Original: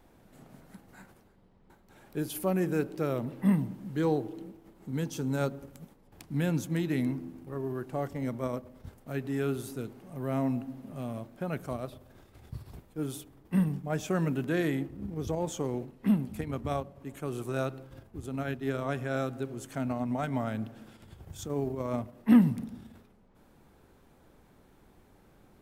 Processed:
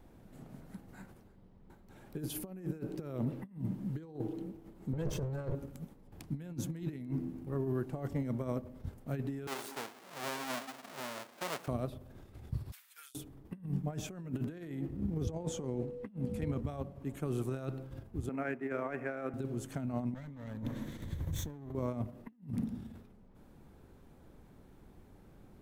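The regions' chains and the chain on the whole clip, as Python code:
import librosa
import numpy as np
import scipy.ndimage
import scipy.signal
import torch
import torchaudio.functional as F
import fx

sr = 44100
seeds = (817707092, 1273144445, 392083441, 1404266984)

y = fx.chain(x, sr, fx.lower_of_two(delay_ms=1.9),
    fx.high_shelf(hz=2400.0, db=-10.5),
    fx.env_flatten(amount_pct=50), at=(4.93, 5.55))
y = fx.chain(y, sr, fx.halfwave_hold(),
    fx.highpass(hz=670.0, slope=12), at=(9.47, 11.68))
y = fx.chain(y, sr, fx.highpass(hz=1500.0, slope=24),
    fx.tilt_eq(slope=2.0),
    fx.over_compress(threshold_db=-54.0, ratio=-1.0), at=(12.72, 13.15))
y = fx.lowpass(y, sr, hz=11000.0, slope=12, at=(15.23, 16.59), fade=0.02)
y = fx.dmg_tone(y, sr, hz=490.0, level_db=-41.0, at=(15.23, 16.59), fade=0.02)
y = fx.chain(y, sr, fx.median_filter(points=9),
    fx.highpass(hz=320.0, slope=12),
    fx.high_shelf_res(hz=2800.0, db=-8.5, q=3.0), at=(18.29, 19.34))
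y = fx.chain(y, sr, fx.lower_of_two(delay_ms=0.49),
    fx.ripple_eq(per_octave=1.1, db=6),
    fx.over_compress(threshold_db=-44.0, ratio=-1.0), at=(20.14, 21.75))
y = fx.over_compress(y, sr, threshold_db=-34.0, ratio=-0.5)
y = fx.low_shelf(y, sr, hz=390.0, db=8.0)
y = y * 10.0 ** (-7.5 / 20.0)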